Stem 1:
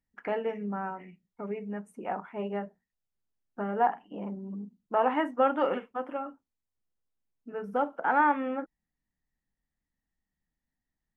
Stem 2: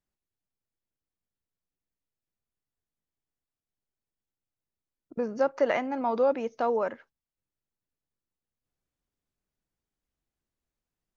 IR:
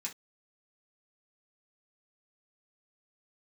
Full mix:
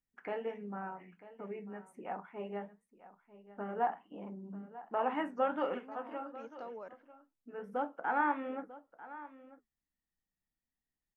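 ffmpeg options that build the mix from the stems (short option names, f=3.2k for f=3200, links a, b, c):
-filter_complex "[0:a]flanger=delay=3.7:depth=7.8:regen=-74:speed=1.4:shape=triangular,volume=-3.5dB,asplit=4[a][b][c][d];[b]volume=-11.5dB[e];[c]volume=-16dB[f];[1:a]acompressor=threshold=-24dB:ratio=6,volume=-17dB[g];[d]apad=whole_len=492268[h];[g][h]sidechaincompress=threshold=-54dB:ratio=8:attack=16:release=100[i];[2:a]atrim=start_sample=2205[j];[e][j]afir=irnorm=-1:irlink=0[k];[f]aecho=0:1:944:1[l];[a][i][k][l]amix=inputs=4:normalize=0"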